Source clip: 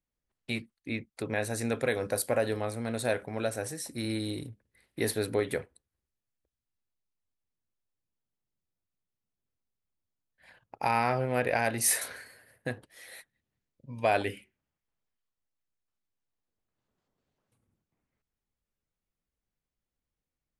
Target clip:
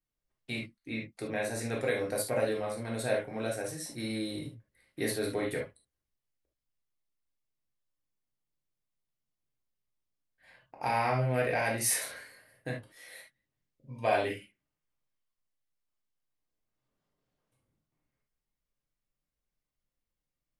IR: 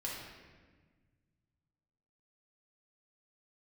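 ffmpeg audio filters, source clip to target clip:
-filter_complex "[1:a]atrim=start_sample=2205,atrim=end_sample=3969,asetrate=48510,aresample=44100[a];[0:a][a]afir=irnorm=-1:irlink=0"

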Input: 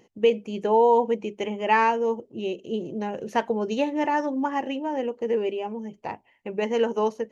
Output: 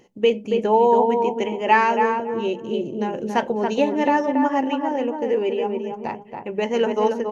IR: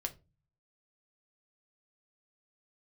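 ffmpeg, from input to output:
-filter_complex "[0:a]asplit=2[a][b];[b]adelay=279,lowpass=f=1.6k:p=1,volume=-4dB,asplit=2[c][d];[d]adelay=279,lowpass=f=1.6k:p=1,volume=0.25,asplit=2[e][f];[f]adelay=279,lowpass=f=1.6k:p=1,volume=0.25[g];[a][c][e][g]amix=inputs=4:normalize=0,asplit=2[h][i];[1:a]atrim=start_sample=2205,asetrate=66150,aresample=44100[j];[i][j]afir=irnorm=-1:irlink=0,volume=1dB[k];[h][k]amix=inputs=2:normalize=0,volume=-1dB"

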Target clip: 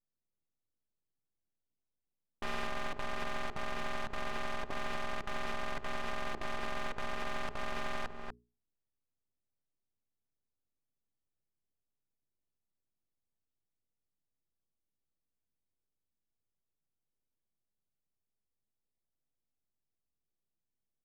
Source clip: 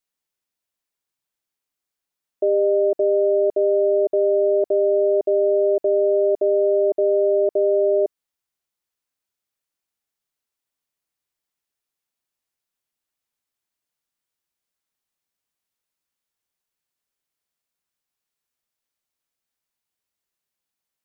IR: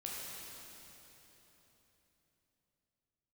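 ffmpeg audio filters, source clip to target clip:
-filter_complex "[0:a]lowshelf=f=270:g=6.5,aeval=exprs='(mod(8.41*val(0)+1,2)-1)/8.41':c=same,acompressor=threshold=-24dB:ratio=4,aeval=exprs='max(val(0),0)':c=same,bandreject=f=60:t=h:w=6,bandreject=f=120:t=h:w=6,bandreject=f=180:t=h:w=6,bandreject=f=240:t=h:w=6,bandreject=f=300:t=h:w=6,bandreject=f=360:t=h:w=6,bandreject=f=420:t=h:w=6,asplit=2[a][b];[b]aecho=0:1:243:0.355[c];[a][c]amix=inputs=2:normalize=0,alimiter=level_in=3dB:limit=-24dB:level=0:latency=1:release=313,volume=-3dB,adynamicsmooth=sensitivity=7.5:basefreq=530,volume=3.5dB"

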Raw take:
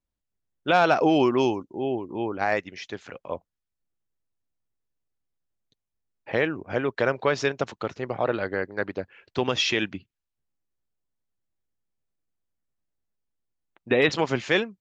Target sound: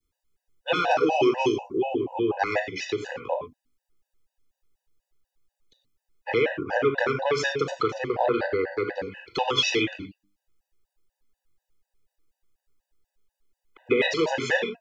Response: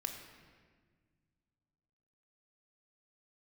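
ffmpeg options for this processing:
-filter_complex "[0:a]adynamicequalizer=threshold=0.0158:dfrequency=1200:dqfactor=0.74:tfrequency=1200:tqfactor=0.74:attack=5:release=100:ratio=0.375:range=2:mode=cutabove:tftype=bell,acrossover=split=160|420|860[a][b][c][d];[a]acompressor=threshold=-43dB:ratio=4[e];[b]acompressor=threshold=-34dB:ratio=4[f];[c]acompressor=threshold=-26dB:ratio=4[g];[d]acompressor=threshold=-26dB:ratio=4[h];[e][f][g][h]amix=inputs=4:normalize=0,lowshelf=f=120:g=-5,bandreject=f=50:t=h:w=6,bandreject=f=100:t=h:w=6,bandreject=f=150:t=h:w=6,bandreject=f=200:t=h:w=6,bandreject=f=250:t=h:w=6,bandreject=f=300:t=h:w=6[i];[1:a]atrim=start_sample=2205,afade=t=out:st=0.17:d=0.01,atrim=end_sample=7938[j];[i][j]afir=irnorm=-1:irlink=0,asplit=2[k][l];[l]acompressor=threshold=-37dB:ratio=8,volume=2dB[m];[k][m]amix=inputs=2:normalize=0,afftfilt=real='re*gt(sin(2*PI*4.1*pts/sr)*(1-2*mod(floor(b*sr/1024/500),2)),0)':imag='im*gt(sin(2*PI*4.1*pts/sr)*(1-2*mod(floor(b*sr/1024/500),2)),0)':win_size=1024:overlap=0.75,volume=5.5dB"

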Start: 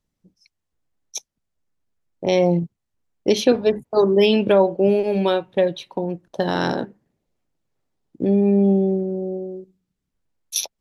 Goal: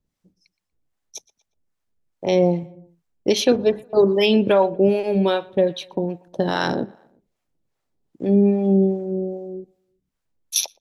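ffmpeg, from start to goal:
-filter_complex "[0:a]asplit=2[a][b];[b]adelay=119,lowpass=f=3.3k:p=1,volume=-23.5dB,asplit=2[c][d];[d]adelay=119,lowpass=f=3.3k:p=1,volume=0.51,asplit=2[e][f];[f]adelay=119,lowpass=f=3.3k:p=1,volume=0.51[g];[a][c][e][g]amix=inputs=4:normalize=0,acrossover=split=590[h][i];[h]aeval=exprs='val(0)*(1-0.7/2+0.7/2*cos(2*PI*2.5*n/s))':c=same[j];[i]aeval=exprs='val(0)*(1-0.7/2-0.7/2*cos(2*PI*2.5*n/s))':c=same[k];[j][k]amix=inputs=2:normalize=0,volume=3dB"

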